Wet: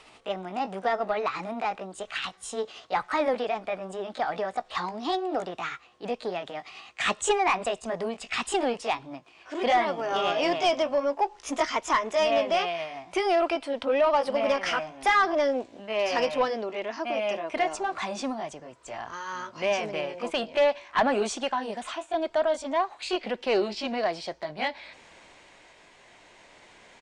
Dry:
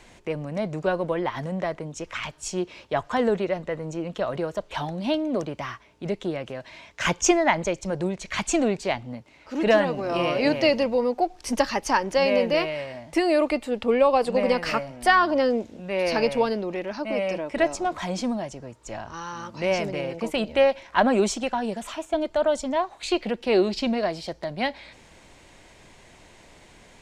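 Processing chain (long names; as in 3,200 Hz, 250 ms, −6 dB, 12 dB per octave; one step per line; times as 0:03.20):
pitch glide at a constant tempo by +4 semitones ending unshifted
mid-hump overdrive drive 16 dB, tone 3,500 Hz, clips at −4.5 dBFS
downsampling to 22,050 Hz
level −7.5 dB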